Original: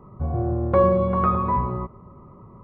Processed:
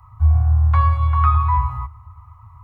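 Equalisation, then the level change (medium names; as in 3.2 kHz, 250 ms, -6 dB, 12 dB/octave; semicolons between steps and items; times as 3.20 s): elliptic band-stop 110–860 Hz, stop band 40 dB; peaking EQ 77 Hz +14 dB 0.66 oct; treble shelf 2.3 kHz +11.5 dB; +1.0 dB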